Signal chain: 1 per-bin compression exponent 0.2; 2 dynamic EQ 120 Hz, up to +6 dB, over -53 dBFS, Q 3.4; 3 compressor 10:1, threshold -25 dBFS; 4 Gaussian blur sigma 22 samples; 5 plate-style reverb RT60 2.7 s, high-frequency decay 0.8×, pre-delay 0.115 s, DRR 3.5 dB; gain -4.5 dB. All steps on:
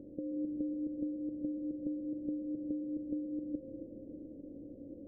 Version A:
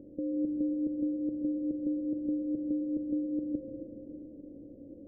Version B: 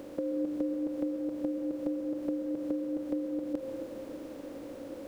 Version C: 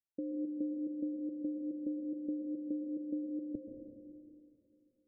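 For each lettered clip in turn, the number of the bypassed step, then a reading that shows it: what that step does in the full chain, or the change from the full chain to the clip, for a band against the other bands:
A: 3, mean gain reduction 3.5 dB; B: 4, momentary loudness spread change -1 LU; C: 1, momentary loudness spread change +2 LU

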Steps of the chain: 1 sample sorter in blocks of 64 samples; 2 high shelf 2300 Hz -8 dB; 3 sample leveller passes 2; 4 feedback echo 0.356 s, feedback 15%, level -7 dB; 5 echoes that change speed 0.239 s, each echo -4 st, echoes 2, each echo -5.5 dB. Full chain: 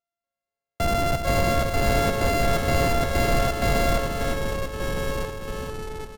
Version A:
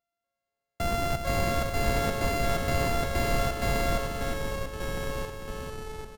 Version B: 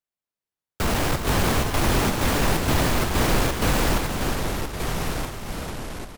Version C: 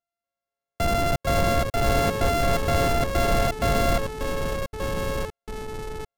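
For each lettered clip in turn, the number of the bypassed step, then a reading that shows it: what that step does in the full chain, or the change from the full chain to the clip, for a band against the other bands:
3, loudness change -5.0 LU; 1, 500 Hz band -5.5 dB; 4, momentary loudness spread change +2 LU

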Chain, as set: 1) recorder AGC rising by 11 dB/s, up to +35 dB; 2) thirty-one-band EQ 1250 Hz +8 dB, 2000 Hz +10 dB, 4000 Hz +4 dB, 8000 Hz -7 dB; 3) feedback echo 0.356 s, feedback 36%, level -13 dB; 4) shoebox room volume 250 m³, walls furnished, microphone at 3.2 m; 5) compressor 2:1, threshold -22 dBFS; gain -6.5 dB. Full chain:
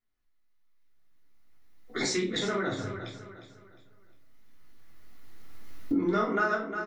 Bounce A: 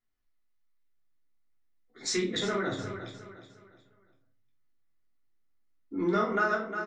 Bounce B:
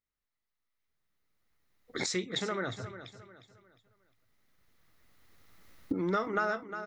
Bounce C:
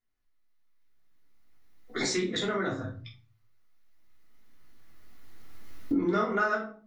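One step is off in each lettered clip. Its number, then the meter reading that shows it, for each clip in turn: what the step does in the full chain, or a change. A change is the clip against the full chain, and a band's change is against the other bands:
1, momentary loudness spread change +1 LU; 4, momentary loudness spread change -1 LU; 3, momentary loudness spread change -2 LU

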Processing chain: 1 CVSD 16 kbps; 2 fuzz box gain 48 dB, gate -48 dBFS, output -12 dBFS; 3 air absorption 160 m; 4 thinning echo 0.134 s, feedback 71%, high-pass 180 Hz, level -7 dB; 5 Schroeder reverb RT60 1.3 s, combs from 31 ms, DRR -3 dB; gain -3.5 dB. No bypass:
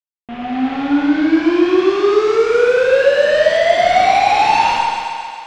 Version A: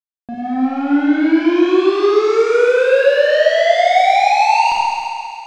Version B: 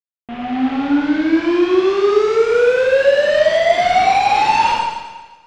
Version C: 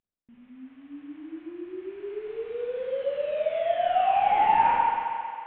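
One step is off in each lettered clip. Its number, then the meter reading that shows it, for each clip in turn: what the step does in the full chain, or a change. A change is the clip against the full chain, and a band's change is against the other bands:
1, momentary loudness spread change -1 LU; 4, echo-to-direct 5.0 dB to 3.0 dB; 2, distortion -1 dB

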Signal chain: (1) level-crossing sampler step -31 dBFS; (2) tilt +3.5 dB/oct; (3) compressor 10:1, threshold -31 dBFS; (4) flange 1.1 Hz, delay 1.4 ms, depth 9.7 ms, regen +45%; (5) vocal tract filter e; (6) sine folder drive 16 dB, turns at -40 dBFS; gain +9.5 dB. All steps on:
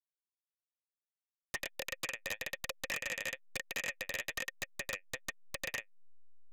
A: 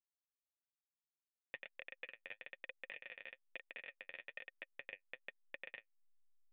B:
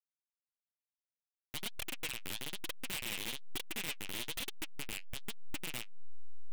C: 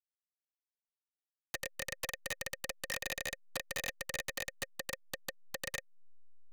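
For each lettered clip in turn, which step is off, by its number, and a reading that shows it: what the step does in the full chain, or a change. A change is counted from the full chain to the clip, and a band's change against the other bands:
6, crest factor change +10.5 dB; 5, 2 kHz band -7.5 dB; 4, 2 kHz band -3.0 dB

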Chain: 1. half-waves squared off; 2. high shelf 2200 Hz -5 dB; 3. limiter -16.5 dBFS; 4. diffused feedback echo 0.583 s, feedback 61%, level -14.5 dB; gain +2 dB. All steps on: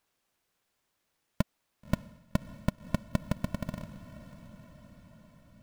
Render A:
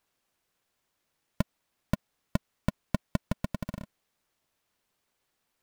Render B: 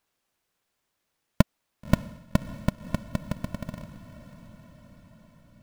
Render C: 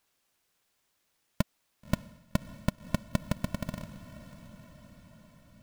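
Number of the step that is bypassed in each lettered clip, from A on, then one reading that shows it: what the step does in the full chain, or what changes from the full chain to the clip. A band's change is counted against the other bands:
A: 4, echo-to-direct -12.5 dB to none; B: 3, mean gain reduction 2.0 dB; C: 2, 8 kHz band +4.0 dB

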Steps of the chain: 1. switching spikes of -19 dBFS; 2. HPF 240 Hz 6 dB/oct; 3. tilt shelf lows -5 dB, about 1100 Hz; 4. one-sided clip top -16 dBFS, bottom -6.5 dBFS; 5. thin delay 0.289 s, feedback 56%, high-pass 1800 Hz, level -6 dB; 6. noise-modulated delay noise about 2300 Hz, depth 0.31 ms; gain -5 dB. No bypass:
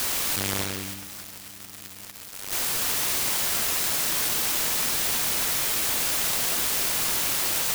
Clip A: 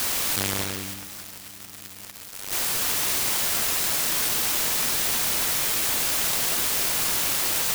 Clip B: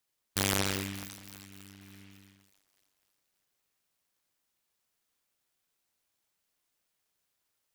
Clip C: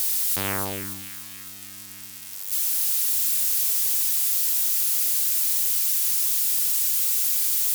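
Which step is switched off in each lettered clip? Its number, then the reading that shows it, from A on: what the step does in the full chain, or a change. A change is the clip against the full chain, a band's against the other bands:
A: 4, distortion -15 dB; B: 1, crest factor change +13.5 dB; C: 6, crest factor change -2.5 dB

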